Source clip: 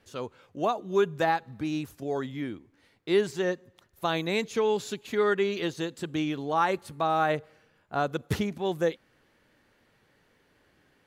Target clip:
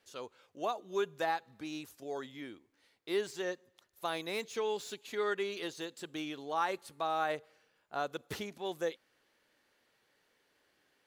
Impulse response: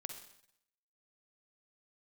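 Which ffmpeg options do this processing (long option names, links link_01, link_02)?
-filter_complex "[0:a]bass=frequency=250:gain=-12,treble=frequency=4000:gain=-9,acrossover=split=4100[link_01][link_02];[link_02]aeval=exprs='0.0158*sin(PI/2*3.16*val(0)/0.0158)':channel_layout=same[link_03];[link_01][link_03]amix=inputs=2:normalize=0,volume=-7.5dB"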